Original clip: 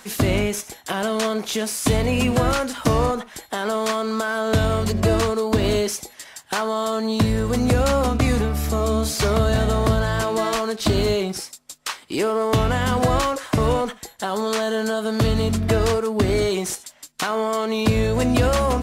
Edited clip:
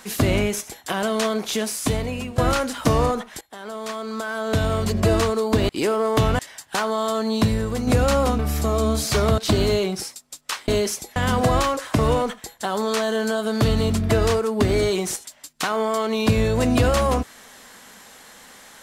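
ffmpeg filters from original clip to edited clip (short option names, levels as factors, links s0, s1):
-filter_complex "[0:a]asplit=10[s0][s1][s2][s3][s4][s5][s6][s7][s8][s9];[s0]atrim=end=2.38,asetpts=PTS-STARTPTS,afade=t=out:st=1.61:d=0.77:silence=0.141254[s10];[s1]atrim=start=2.38:end=3.41,asetpts=PTS-STARTPTS,afade=t=in:d=0.004:c=hsin:silence=0.141254,afade=t=out:st=1.026:d=0.004:c=hsin:silence=0.158489[s11];[s2]atrim=start=3.41:end=5.692,asetpts=PTS-STARTPTS,afade=t=in:d=1.63:silence=0.158489[s12];[s3]atrim=start=12.048:end=12.752[s13];[s4]atrim=start=6.168:end=7.65,asetpts=PTS-STARTPTS,afade=t=out:st=1.002:d=0.48:silence=0.501187[s14];[s5]atrim=start=7.65:end=8.172,asetpts=PTS-STARTPTS,afade=t=in:d=0.004:c=hsin:silence=0.501187[s15];[s6]atrim=start=8.468:end=9.462[s16];[s7]atrim=start=10.748:end=12.052[s17];[s8]atrim=start=5.688:end=6.172[s18];[s9]atrim=start=12.748[s19];[s10][s11][s12]concat=n=3:v=0:a=1[s20];[s20][s13]acrossfade=d=0.004:c1=hsin:c2=hsin[s21];[s14][s15]concat=n=2:v=0:a=1[s22];[s21][s22]acrossfade=d=0.004:c1=hsin:c2=hsin[s23];[s23][s16]acrossfade=d=0.004:c1=hsin:c2=hsin[s24];[s24][s17]acrossfade=d=0.004:c1=hsin:c2=hsin[s25];[s25][s18]acrossfade=d=0.004:c1=hsin:c2=hsin[s26];[s26][s19]acrossfade=d=0.004:c1=hsin:c2=hsin"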